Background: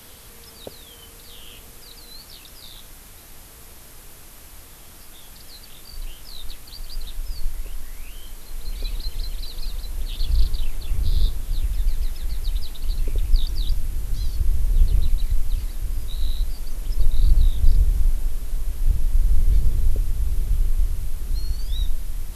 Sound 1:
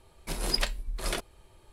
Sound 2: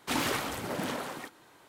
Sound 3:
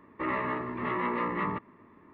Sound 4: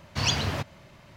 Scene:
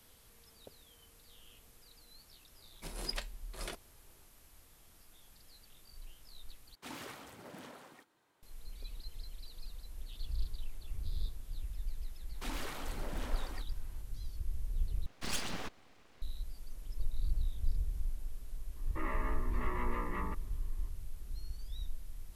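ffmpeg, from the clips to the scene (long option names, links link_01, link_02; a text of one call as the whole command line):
ffmpeg -i bed.wav -i cue0.wav -i cue1.wav -i cue2.wav -i cue3.wav -filter_complex "[2:a]asplit=2[link_01][link_02];[0:a]volume=-17.5dB[link_03];[link_02]acompressor=threshold=-34dB:ratio=2:attack=1.1:release=68:knee=1:detection=peak[link_04];[4:a]aeval=exprs='abs(val(0))':channel_layout=same[link_05];[link_03]asplit=3[link_06][link_07][link_08];[link_06]atrim=end=6.754[link_09];[link_01]atrim=end=1.68,asetpts=PTS-STARTPTS,volume=-16.5dB[link_10];[link_07]atrim=start=8.426:end=15.064[link_11];[link_05]atrim=end=1.16,asetpts=PTS-STARTPTS,volume=-8.5dB[link_12];[link_08]atrim=start=16.216[link_13];[1:a]atrim=end=1.72,asetpts=PTS-STARTPTS,volume=-11dB,afade=type=in:duration=0.004:curve=hsin,afade=type=out:start_time=1.716:duration=0.004:curve=hsin,adelay=2550[link_14];[link_04]atrim=end=1.68,asetpts=PTS-STARTPTS,volume=-8dB,afade=type=in:duration=0.004:curve=hsin,afade=type=out:start_time=1.676:duration=0.004:curve=hsin,adelay=12340[link_15];[3:a]atrim=end=2.13,asetpts=PTS-STARTPTS,volume=-9.5dB,afade=type=in:duration=0.004:curve=hsin,afade=type=out:start_time=2.126:duration=0.004:curve=hsin,adelay=827316S[link_16];[link_09][link_10]acrossfade=duration=0.004:curve1=hsin:curve2=hsin[link_17];[link_17][link_11]acrossfade=duration=0.004:curve1=hsin:curve2=hsin[link_18];[link_18][link_12]acrossfade=duration=0.004:curve1=hsin:curve2=hsin[link_19];[link_19][link_13]acrossfade=duration=0.004:curve1=hsin:curve2=hsin[link_20];[link_20][link_14][link_15][link_16]amix=inputs=4:normalize=0" out.wav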